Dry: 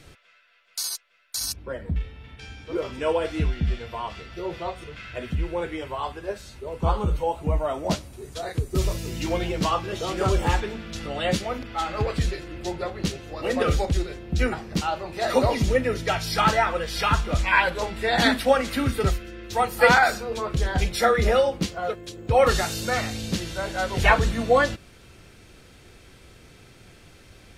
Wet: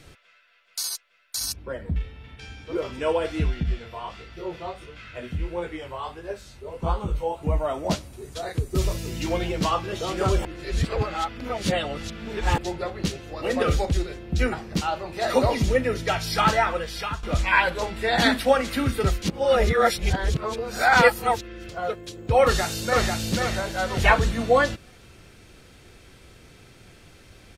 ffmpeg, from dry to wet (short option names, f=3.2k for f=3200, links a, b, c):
-filter_complex "[0:a]asettb=1/sr,asplit=3[a][b][c];[a]atrim=end=3.634[d];[b]atrim=start=3.63:end=7.43,asetpts=PTS-STARTPTS,afade=t=in:d=0.004:c=qsin,afade=t=out:st=3.796:d=0.004:c=qsin,flanger=delay=17:depth=7.5:speed=1.5[e];[c]atrim=start=7.426[f];[d][e]acrossfade=d=0.004:c1=hsin:c2=qsin[g];[g][f]acrossfade=d=0.004:c1=qsin:c2=hsin,asplit=2[h][i];[i]afade=t=in:st=22.43:d=0.01,afade=t=out:st=23.11:d=0.01,aecho=0:1:490|980|1470|1960:0.707946|0.212384|0.0637151|0.0191145[j];[h][j]amix=inputs=2:normalize=0,asplit=6[k][l][m][n][o][p];[k]atrim=end=10.452[q];[l]atrim=start=10.448:end=12.582,asetpts=PTS-STARTPTS,areverse[r];[m]atrim=start=12.578:end=17.23,asetpts=PTS-STARTPTS,afade=t=out:st=4.142:d=0.51:silence=0.177828[s];[n]atrim=start=17.23:end=19.222,asetpts=PTS-STARTPTS,afade=t=in:d=0.004:c=hsin:silence=0.177828[t];[o]atrim=start=19.218:end=21.692,asetpts=PTS-STARTPTS,areverse[u];[p]atrim=start=21.688[v];[q][r]acrossfade=d=0.004:c1=hsin:c2=hsin[w];[s][t]concat=n=2:v=0:a=1[x];[w][x]acrossfade=d=0.004:c1=hsin:c2=hsin[y];[y][u]acrossfade=d=0.004:c1=hsin:c2=hsin[z];[z][v]acrossfade=d=0.004:c1=hsin:c2=hsin"